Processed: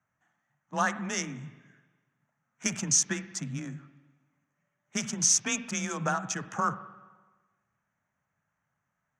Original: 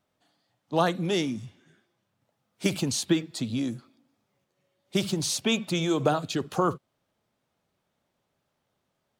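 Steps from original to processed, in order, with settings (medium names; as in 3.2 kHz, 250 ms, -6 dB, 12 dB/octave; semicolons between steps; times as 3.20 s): local Wiener filter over 9 samples; FFT filter 120 Hz 0 dB, 360 Hz -16 dB, 1.7 kHz +6 dB, 4.1 kHz -13 dB, 6 kHz +13 dB, 13 kHz -13 dB; frequency shift +25 Hz; spring tank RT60 1.3 s, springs 42/59 ms, chirp 65 ms, DRR 13 dB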